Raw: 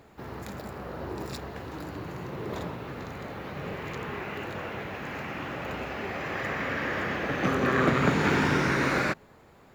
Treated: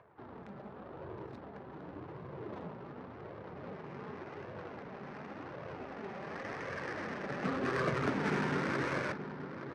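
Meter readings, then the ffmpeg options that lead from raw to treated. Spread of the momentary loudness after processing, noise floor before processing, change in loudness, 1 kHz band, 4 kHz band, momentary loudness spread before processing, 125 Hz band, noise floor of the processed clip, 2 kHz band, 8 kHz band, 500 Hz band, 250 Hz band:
15 LU, −55 dBFS, −9.5 dB, −9.0 dB, −12.0 dB, 15 LU, −9.5 dB, −49 dBFS, −10.5 dB, −13.0 dB, −7.5 dB, −9.0 dB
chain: -filter_complex "[0:a]acrossover=split=840|3500[link_01][link_02][link_03];[link_02]acompressor=mode=upward:threshold=-38dB:ratio=2.5[link_04];[link_01][link_04][link_03]amix=inputs=3:normalize=0,flanger=delay=1.8:depth=3.4:regen=-30:speed=0.89:shape=sinusoidal,highpass=frequency=89:width=0.5412,highpass=frequency=89:width=1.3066,asplit=2[link_05][link_06];[link_06]adelay=876,lowpass=frequency=4400:poles=1,volume=-9.5dB,asplit=2[link_07][link_08];[link_08]adelay=876,lowpass=frequency=4400:poles=1,volume=0.43,asplit=2[link_09][link_10];[link_10]adelay=876,lowpass=frequency=4400:poles=1,volume=0.43,asplit=2[link_11][link_12];[link_12]adelay=876,lowpass=frequency=4400:poles=1,volume=0.43,asplit=2[link_13][link_14];[link_14]adelay=876,lowpass=frequency=4400:poles=1,volume=0.43[link_15];[link_05][link_07][link_09][link_11][link_13][link_15]amix=inputs=6:normalize=0,adynamicsmooth=sensitivity=4:basefreq=730,lowpass=9800,bandreject=frequency=7100:width=10,volume=-5dB"

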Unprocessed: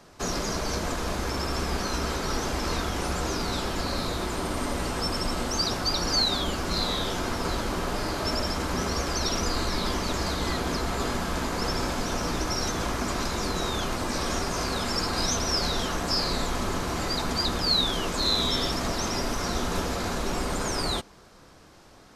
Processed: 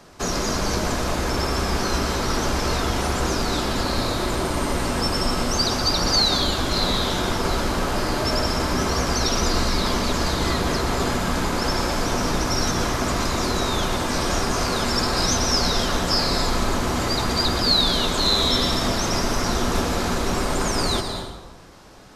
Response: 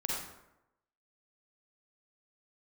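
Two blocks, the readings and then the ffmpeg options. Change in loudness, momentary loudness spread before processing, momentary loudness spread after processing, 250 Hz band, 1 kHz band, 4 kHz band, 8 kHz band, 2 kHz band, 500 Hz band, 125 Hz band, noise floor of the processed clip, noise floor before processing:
+5.5 dB, 5 LU, 5 LU, +6.0 dB, +5.5 dB, +5.5 dB, +5.5 dB, +5.5 dB, +6.0 dB, +6.0 dB, −32 dBFS, −52 dBFS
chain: -filter_complex "[0:a]asplit=2[link_01][link_02];[1:a]atrim=start_sample=2205,asetrate=29988,aresample=44100,adelay=120[link_03];[link_02][link_03]afir=irnorm=-1:irlink=0,volume=-12dB[link_04];[link_01][link_04]amix=inputs=2:normalize=0,volume=4.5dB"

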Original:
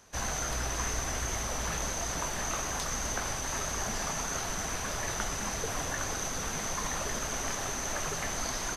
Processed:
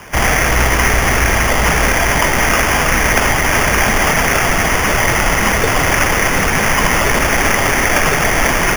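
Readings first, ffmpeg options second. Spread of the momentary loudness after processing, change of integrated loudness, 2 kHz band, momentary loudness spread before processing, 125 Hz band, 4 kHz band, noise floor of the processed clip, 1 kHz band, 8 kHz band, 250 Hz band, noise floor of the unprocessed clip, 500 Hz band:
1 LU, +20.0 dB, +25.0 dB, 1 LU, +20.5 dB, +18.0 dB, −15 dBFS, +21.0 dB, +12.5 dB, +21.0 dB, −36 dBFS, +21.0 dB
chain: -filter_complex "[0:a]asplit=2[link_01][link_02];[link_02]aeval=exprs='(mod(47.3*val(0)+1,2)-1)/47.3':channel_layout=same,volume=-6.5dB[link_03];[link_01][link_03]amix=inputs=2:normalize=0,acrusher=samples=11:mix=1:aa=0.000001,alimiter=level_in=21dB:limit=-1dB:release=50:level=0:latency=1,volume=-1dB"

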